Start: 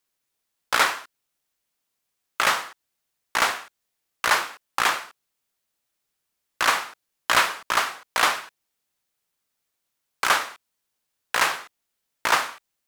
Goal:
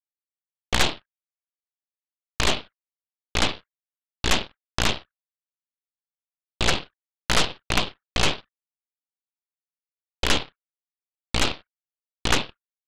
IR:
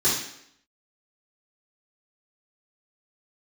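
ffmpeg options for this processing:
-af "anlmdn=1.58,highpass=f=180:t=q:w=0.5412,highpass=f=180:t=q:w=1.307,lowpass=f=2.5k:t=q:w=0.5176,lowpass=f=2.5k:t=q:w=0.7071,lowpass=f=2.5k:t=q:w=1.932,afreqshift=240,aeval=exprs='0.562*(cos(1*acos(clip(val(0)/0.562,-1,1)))-cos(1*PI/2))+0.2*(cos(3*acos(clip(val(0)/0.562,-1,1)))-cos(3*PI/2))+0.1*(cos(8*acos(clip(val(0)/0.562,-1,1)))-cos(8*PI/2))':c=same,volume=3dB"

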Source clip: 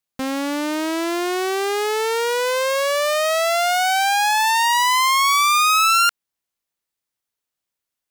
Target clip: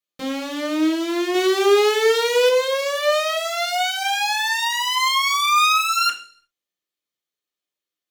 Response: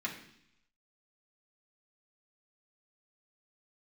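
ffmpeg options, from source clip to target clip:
-filter_complex "[0:a]asettb=1/sr,asplit=3[a][b][c];[a]atrim=end=1.344[d];[b]atrim=start=1.34:end=2.49,asetpts=PTS-STARTPTS,afade=t=in:d=0.004:c=qsin,afade=t=out:st=1.146:d=0.004:c=qsin,acontrast=34[e];[c]atrim=start=2.486[f];[d][e]acrossfade=d=0.004:c1=hsin:c2=qsin[g];[g][f]acrossfade=d=0.004:c1=qsin:c2=hsin[h];[1:a]atrim=start_sample=2205,asetrate=74970,aresample=44100[i];[h][i]afir=irnorm=-1:irlink=0"

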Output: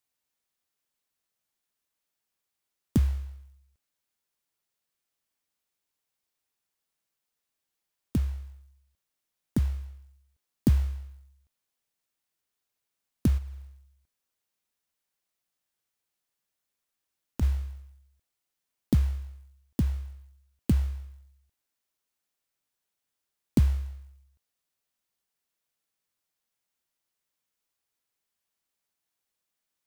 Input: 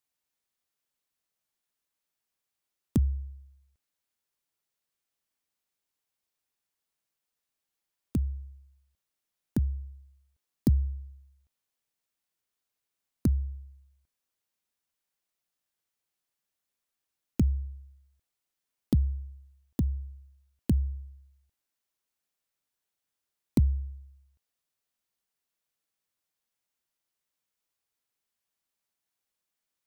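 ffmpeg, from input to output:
-filter_complex "[0:a]asplit=3[a][b][c];[a]afade=t=out:st=13.37:d=0.02[d];[b]acompressor=threshold=-35dB:ratio=4,afade=t=in:st=13.37:d=0.02,afade=t=out:st=17.41:d=0.02[e];[c]afade=t=in:st=17.41:d=0.02[f];[d][e][f]amix=inputs=3:normalize=0,acrusher=bits=6:mode=log:mix=0:aa=0.000001,volume=1.5dB"

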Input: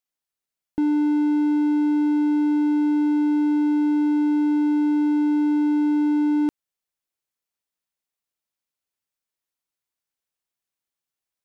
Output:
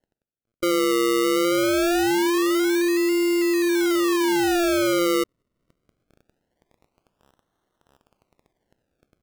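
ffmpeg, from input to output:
-af "areverse,acompressor=mode=upward:threshold=-41dB:ratio=2.5,areverse,asetrate=54684,aresample=44100,afftfilt=real='hypot(re,im)*cos(PI*b)':imag='0':win_size=512:overlap=0.75,acrusher=samples=36:mix=1:aa=0.000001:lfo=1:lforange=36:lforate=0.23"

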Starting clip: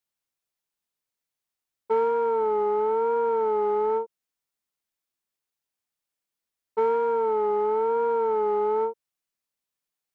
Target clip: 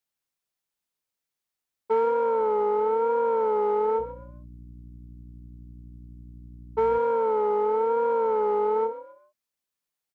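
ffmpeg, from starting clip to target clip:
-filter_complex "[0:a]asettb=1/sr,asplit=3[a][b][c];[a]atrim=end=3.994[d];[b]atrim=start=3.99:end=6.98,asetpts=PTS-STARTPTS,afade=t=in:d=0.004:c=qsin,afade=t=out:st=2.986:d=0.004:c=qsin,aeval=exprs='val(0)+0.00708*(sin(2*PI*60*n/s)+sin(2*PI*2*60*n/s)/2+sin(2*PI*3*60*n/s)/3+sin(2*PI*4*60*n/s)/4+sin(2*PI*5*60*n/s)/5)':c=same[e];[c]atrim=start=6.976[f];[d][e]acrossfade=d=0.004:c1=hsin:c2=qsin[g];[g][f]acrossfade=d=0.004:c1=qsin:c2=hsin,asplit=4[h][i][j][k];[i]adelay=131,afreqshift=48,volume=-14.5dB[l];[j]adelay=262,afreqshift=96,volume=-24.4dB[m];[k]adelay=393,afreqshift=144,volume=-34.3dB[n];[h][l][m][n]amix=inputs=4:normalize=0"

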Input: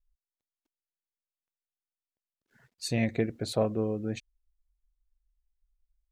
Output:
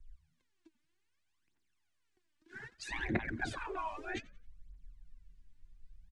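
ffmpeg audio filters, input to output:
-filter_complex "[0:a]bandreject=f=1.3k:w=8.9,afftfilt=real='re*lt(hypot(re,im),0.0282)':imag='im*lt(hypot(re,im),0.0282)':win_size=1024:overlap=0.75,equalizer=f=1.6k:w=0.49:g=11,acrossover=split=230|980|1700[a][b][c][d];[d]acompressor=threshold=-55dB:ratio=12[e];[a][b][c][e]amix=inputs=4:normalize=0,aphaser=in_gain=1:out_gain=1:delay=3.5:decay=0.76:speed=0.63:type=triangular,lowpass=f=9.4k:w=0.5412,lowpass=f=9.4k:w=1.3066,lowshelf=f=420:t=q:w=3:g=7,asplit=4[f][g][h][i];[g]adelay=89,afreqshift=-87,volume=-22dB[j];[h]adelay=178,afreqshift=-174,volume=-30.6dB[k];[i]adelay=267,afreqshift=-261,volume=-39.3dB[l];[f][j][k][l]amix=inputs=4:normalize=0,volume=3dB"

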